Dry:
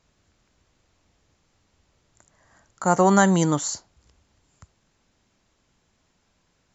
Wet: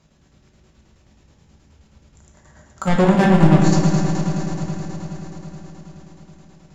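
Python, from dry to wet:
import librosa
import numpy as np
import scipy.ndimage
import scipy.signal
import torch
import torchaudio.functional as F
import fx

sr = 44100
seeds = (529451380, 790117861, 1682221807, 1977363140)

p1 = fx.rider(x, sr, range_db=10, speed_s=0.5)
p2 = x + F.gain(torch.from_numpy(p1), 1.0).numpy()
p3 = scipy.signal.sosfilt(scipy.signal.butter(2, 42.0, 'highpass', fs=sr, output='sos'), p2)
p4 = fx.low_shelf(p3, sr, hz=370.0, db=8.0)
p5 = fx.env_lowpass_down(p4, sr, base_hz=2700.0, full_db=-9.0)
p6 = 10.0 ** (-13.0 / 20.0) * np.tanh(p5 / 10.0 ** (-13.0 / 20.0))
p7 = fx.echo_heads(p6, sr, ms=84, heads='second and third', feedback_pct=75, wet_db=-8.0)
p8 = fx.chopper(p7, sr, hz=9.4, depth_pct=65, duty_pct=60)
p9 = fx.room_shoebox(p8, sr, seeds[0], volume_m3=270.0, walls='mixed', distance_m=1.1)
y = F.gain(torch.from_numpy(p9), -1.0).numpy()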